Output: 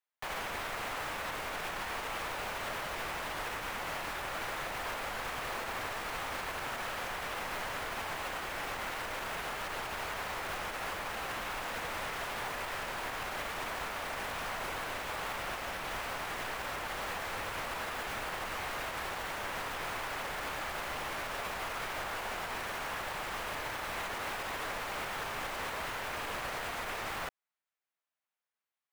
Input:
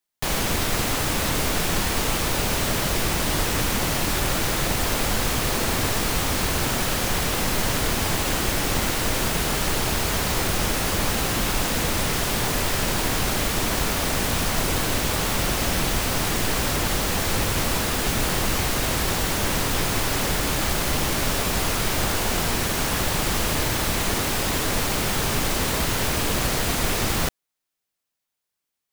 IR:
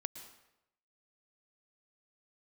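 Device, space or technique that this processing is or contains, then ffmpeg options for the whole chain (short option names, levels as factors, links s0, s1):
DJ mixer with the lows and highs turned down: -filter_complex "[0:a]acrossover=split=550 2700:gain=0.158 1 0.2[s0][s1][s2];[s0][s1][s2]amix=inputs=3:normalize=0,alimiter=level_in=1.19:limit=0.0631:level=0:latency=1:release=109,volume=0.841,volume=0.708"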